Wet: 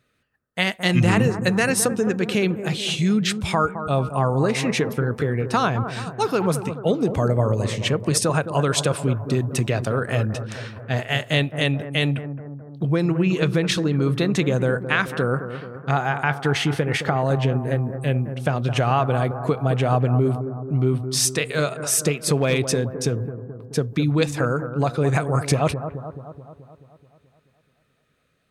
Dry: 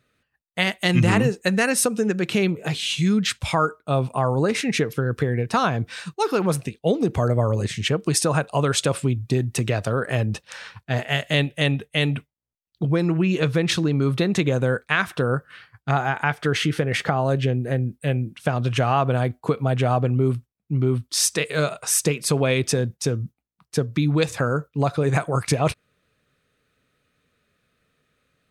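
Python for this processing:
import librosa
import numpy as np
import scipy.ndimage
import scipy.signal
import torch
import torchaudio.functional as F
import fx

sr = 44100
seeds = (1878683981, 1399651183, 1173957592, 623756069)

y = fx.overload_stage(x, sr, gain_db=11.0, at=(22.12, 22.58))
y = fx.echo_bbd(y, sr, ms=215, stages=2048, feedback_pct=60, wet_db=-10.0)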